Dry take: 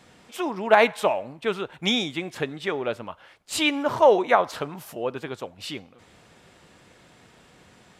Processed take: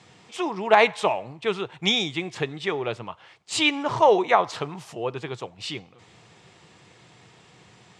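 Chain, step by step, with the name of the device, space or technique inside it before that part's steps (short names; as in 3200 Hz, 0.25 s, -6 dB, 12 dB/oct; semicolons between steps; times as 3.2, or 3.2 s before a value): car door speaker (speaker cabinet 100–8200 Hz, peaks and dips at 120 Hz +6 dB, 250 Hz -9 dB, 570 Hz -7 dB, 1500 Hz -6 dB); gain +2.5 dB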